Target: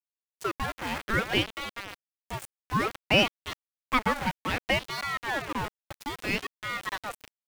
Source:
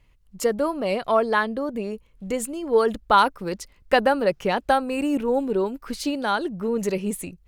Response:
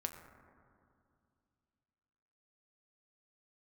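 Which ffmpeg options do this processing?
-af "aeval=exprs='val(0)*gte(abs(val(0)),0.0631)':c=same,adynamicequalizer=threshold=0.0178:dfrequency=1800:dqfactor=0.72:tfrequency=1800:tqfactor=0.72:attack=5:release=100:ratio=0.375:range=4:mode=boostabove:tftype=bell,aeval=exprs='val(0)*sin(2*PI*1000*n/s+1000*0.7/0.6*sin(2*PI*0.6*n/s))':c=same,volume=0.447"

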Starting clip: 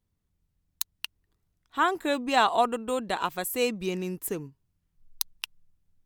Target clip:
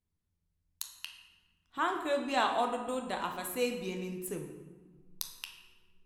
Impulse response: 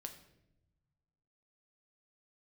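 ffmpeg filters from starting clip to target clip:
-filter_complex "[0:a]asettb=1/sr,asplit=3[s0][s1][s2];[s0]atrim=end=0.964[s3];[s1]atrim=start=0.96:end=1.78,asetpts=PTS-STARTPTS,afade=t=in:d=0.004:c=qsin,afade=t=out:st=0.816:d=0.004:c=qsin,equalizer=f=210:t=o:w=0.49:g=11.5[s4];[s2]atrim=start=1.776[s5];[s3][s4]acrossfade=d=0.004:c1=hsin:c2=qsin[s6];[s6][s5]acrossfade=d=0.004:c1=qsin:c2=hsin[s7];[1:a]atrim=start_sample=2205,asetrate=24696,aresample=44100[s8];[s7][s8]afir=irnorm=-1:irlink=0,volume=0.531"

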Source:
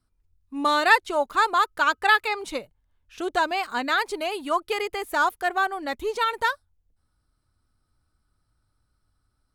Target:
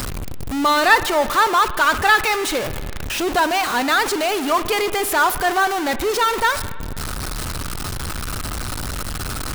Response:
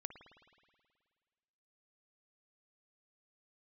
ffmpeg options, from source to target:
-filter_complex "[0:a]aeval=exprs='val(0)+0.5*0.0891*sgn(val(0))':c=same,asplit=2[s0][s1];[1:a]atrim=start_sample=2205,lowshelf=f=350:g=-4.5[s2];[s1][s2]afir=irnorm=-1:irlink=0,volume=1.68[s3];[s0][s3]amix=inputs=2:normalize=0,volume=0.668"

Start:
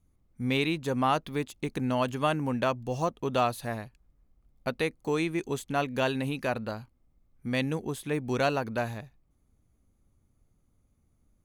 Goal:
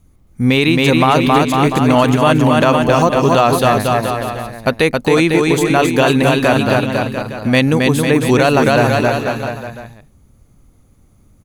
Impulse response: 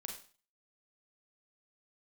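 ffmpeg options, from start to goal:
-af "aecho=1:1:270|499.5|694.6|860.4|1001:0.631|0.398|0.251|0.158|0.1,alimiter=level_in=7.94:limit=0.891:release=50:level=0:latency=1,volume=0.891"

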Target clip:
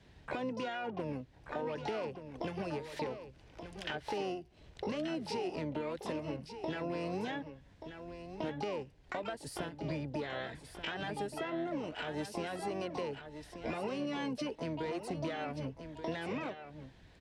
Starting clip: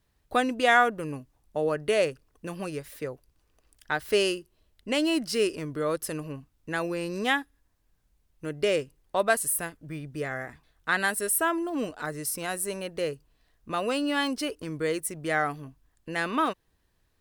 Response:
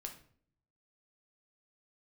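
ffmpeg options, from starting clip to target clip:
-filter_complex "[0:a]acrossover=split=160|1100[s0][s1][s2];[s0]acompressor=threshold=0.00316:ratio=4[s3];[s1]acompressor=threshold=0.0501:ratio=4[s4];[s2]acompressor=threshold=0.0158:ratio=4[s5];[s3][s4][s5]amix=inputs=3:normalize=0,asoftclip=type=tanh:threshold=0.112,alimiter=level_in=1.5:limit=0.0631:level=0:latency=1:release=154,volume=0.668,highpass=49,asplit=4[s6][s7][s8][s9];[s7]asetrate=22050,aresample=44100,atempo=2,volume=0.2[s10];[s8]asetrate=33038,aresample=44100,atempo=1.33484,volume=0.158[s11];[s9]asetrate=88200,aresample=44100,atempo=0.5,volume=0.562[s12];[s6][s10][s11][s12]amix=inputs=4:normalize=0,lowpass=4000,acompressor=threshold=0.00316:ratio=5,equalizer=f=1200:w=4:g=-9,aecho=1:1:1181:0.335,volume=4.47"

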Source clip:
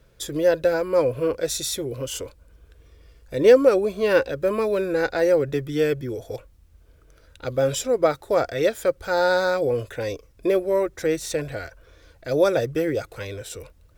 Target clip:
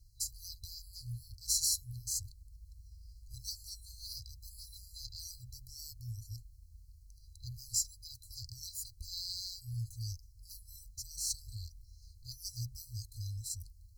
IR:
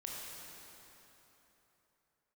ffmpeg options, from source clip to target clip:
-af "afftfilt=real='re*(1-between(b*sr/4096,120,4000))':imag='im*(1-between(b*sr/4096,120,4000))':win_size=4096:overlap=0.75,volume=0.794"

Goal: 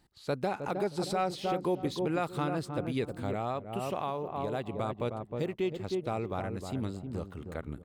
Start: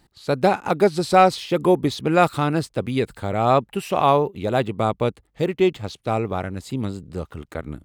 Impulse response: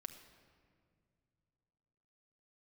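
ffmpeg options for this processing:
-filter_complex "[0:a]asplit=2[s0][s1];[s1]adelay=312,lowpass=f=830:p=1,volume=0.501,asplit=2[s2][s3];[s3]adelay=312,lowpass=f=830:p=1,volume=0.3,asplit=2[s4][s5];[s5]adelay=312,lowpass=f=830:p=1,volume=0.3,asplit=2[s6][s7];[s7]adelay=312,lowpass=f=830:p=1,volume=0.3[s8];[s2][s4][s6][s8]amix=inputs=4:normalize=0[s9];[s0][s9]amix=inputs=2:normalize=0,asettb=1/sr,asplit=3[s10][s11][s12];[s10]atrim=end=3.324[s13];[s11]atrim=start=3.32:end=4.81,asetpts=PTS-STARTPTS,afade=t=in:d=0.004:c=qsin,afade=t=out:st=1.486:d=0.004:c=qsin,acompressor=threshold=0.0891:ratio=12[s14];[s12]atrim=start=4.806[s15];[s13][s14]acrossfade=d=0.004:c1=hsin:c2=qsin[s16];[s16][s15]acrossfade=d=0.004:c1=qsin:c2=hsin,alimiter=limit=0.224:level=0:latency=1:release=241,volume=0.376"

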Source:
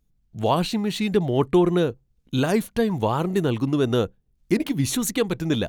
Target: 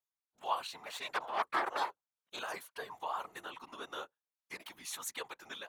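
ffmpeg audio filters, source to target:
-filter_complex "[0:a]asettb=1/sr,asplit=3[s0][s1][s2];[s0]atrim=end=0.864[s3];[s1]atrim=start=0.86:end=2.39,asetpts=PTS-STARTPTS,afade=t=in:d=0.004:c=qsin,afade=t=out:st=1.526:d=0.004:c=qsin,aeval=exprs='0.447*(cos(1*acos(clip(val(0)/0.447,-1,1)))-cos(1*PI/2))+0.158*(cos(6*acos(clip(val(0)/0.447,-1,1)))-cos(6*PI/2))':c=same[s4];[s2]atrim=start=2.386[s5];[s3][s4]acrossfade=d=0.004:c1=hsin:c2=qsin[s6];[s6][s5]acrossfade=d=0.004:c1=qsin:c2=hsin,highpass=f=1000:t=q:w=1.9,afftfilt=real='hypot(re,im)*cos(2*PI*random(0))':imag='hypot(re,im)*sin(2*PI*random(1))':win_size=512:overlap=0.75,volume=0.398"

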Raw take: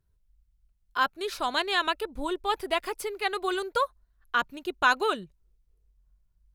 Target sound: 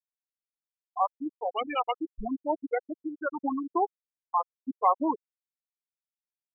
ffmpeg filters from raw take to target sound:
-af "asetrate=32097,aresample=44100,atempo=1.37395,afftfilt=real='re*gte(hypot(re,im),0.2)':imag='im*gte(hypot(re,im),0.2)':win_size=1024:overlap=0.75"

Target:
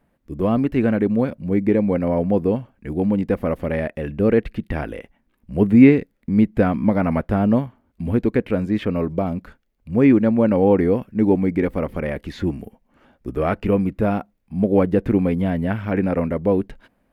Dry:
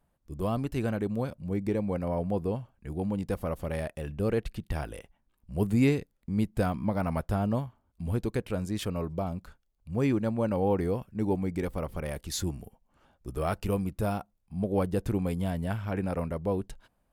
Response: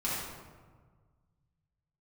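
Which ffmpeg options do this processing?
-filter_complex "[0:a]acrossover=split=3300[s0][s1];[s1]acompressor=threshold=0.00126:ratio=4:attack=1:release=60[s2];[s0][s2]amix=inputs=2:normalize=0,equalizer=f=250:t=o:w=1:g=10,equalizer=f=500:t=o:w=1:g=5,equalizer=f=2000:t=o:w=1:g=9,equalizer=f=8000:t=o:w=1:g=-4,volume=1.58"

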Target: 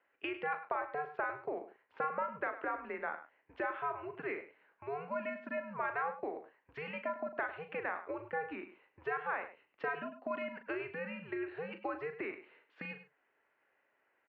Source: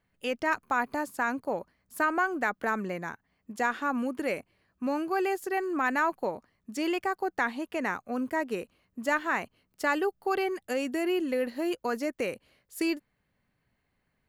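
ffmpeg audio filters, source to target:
-filter_complex "[0:a]acompressor=threshold=0.0158:ratio=10,asplit=2[s0][s1];[s1]adelay=39,volume=0.335[s2];[s0][s2]amix=inputs=2:normalize=0,asplit=2[s3][s4];[s4]aecho=0:1:102:0.224[s5];[s3][s5]amix=inputs=2:normalize=0,highpass=f=530:t=q:w=0.5412,highpass=f=530:t=q:w=1.307,lowpass=f=2900:t=q:w=0.5176,lowpass=f=2900:t=q:w=0.7071,lowpass=f=2900:t=q:w=1.932,afreqshift=-150,volume=1.58"

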